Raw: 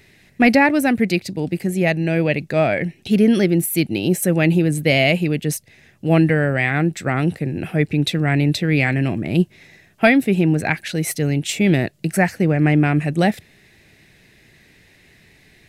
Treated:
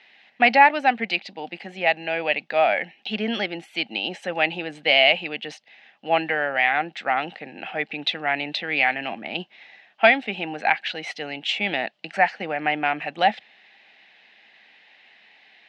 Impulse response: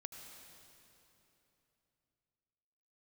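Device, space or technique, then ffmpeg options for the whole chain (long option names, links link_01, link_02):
guitar cabinet: -af "highpass=670,highpass=110,equalizer=frequency=220:width_type=q:width=4:gain=8,equalizer=frequency=380:width_type=q:width=4:gain=-6,equalizer=frequency=800:width_type=q:width=4:gain=10,equalizer=frequency=3000:width_type=q:width=4:gain=7,lowpass=frequency=4200:width=0.5412,lowpass=frequency=4200:width=1.3066,volume=-1dB"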